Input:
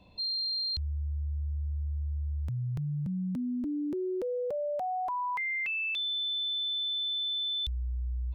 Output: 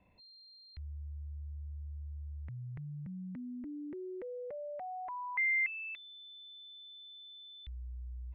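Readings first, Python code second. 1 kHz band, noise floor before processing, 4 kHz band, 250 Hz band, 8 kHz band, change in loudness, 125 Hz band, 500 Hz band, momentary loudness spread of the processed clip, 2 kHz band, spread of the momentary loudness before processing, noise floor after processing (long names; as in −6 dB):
−9.0 dB, −33 dBFS, −21.0 dB, −10.5 dB, can't be measured, −8.5 dB, −10.5 dB, −10.0 dB, 17 LU, −0.5 dB, 6 LU, −58 dBFS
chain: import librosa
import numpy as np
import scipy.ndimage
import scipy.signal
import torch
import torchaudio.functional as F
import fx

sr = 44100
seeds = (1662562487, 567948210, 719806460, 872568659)

y = fx.ladder_lowpass(x, sr, hz=2200.0, resonance_pct=70)
y = F.gain(torch.from_numpy(y), 1.0).numpy()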